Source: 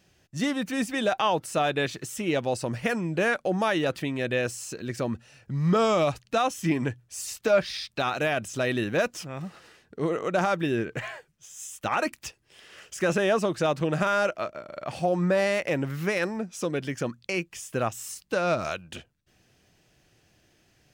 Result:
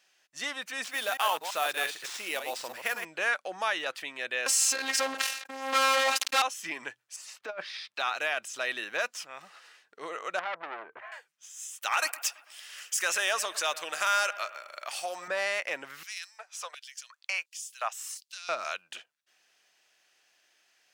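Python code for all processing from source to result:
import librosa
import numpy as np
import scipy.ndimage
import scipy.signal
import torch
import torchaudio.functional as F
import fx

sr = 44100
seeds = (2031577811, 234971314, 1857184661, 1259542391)

y = fx.chain(x, sr, fx.reverse_delay(ms=111, wet_db=-7.0),
    fx.sample_hold(seeds[0], rate_hz=13000.0, jitter_pct=0), at=(0.84, 3.05))
y = fx.chain(y, sr, fx.leveller(passes=5),
    fx.robotise(hz=268.0),
    fx.sustainer(db_per_s=77.0), at=(4.46, 6.42))
y = fx.chain(y, sr, fx.lowpass(hz=1100.0, slope=6),
    fx.hum_notches(base_hz=50, count=2),
    fx.over_compress(threshold_db=-26.0, ratio=-0.5), at=(7.16, 7.94))
y = fx.chain(y, sr, fx.lowpass(hz=1200.0, slope=12),
    fx.transformer_sat(knee_hz=1300.0), at=(10.39, 11.12))
y = fx.chain(y, sr, fx.riaa(side='recording'),
    fx.echo_bbd(ms=111, stages=2048, feedback_pct=54, wet_db=-16), at=(11.82, 15.28))
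y = fx.chain(y, sr, fx.highpass(hz=530.0, slope=24),
    fx.filter_lfo_highpass(shape='square', hz=1.4, low_hz=680.0, high_hz=4300.0, q=1.1), at=(16.03, 18.49))
y = scipy.signal.sosfilt(scipy.signal.butter(2, 980.0, 'highpass', fs=sr, output='sos'), y)
y = fx.high_shelf(y, sr, hz=11000.0, db=-5.0)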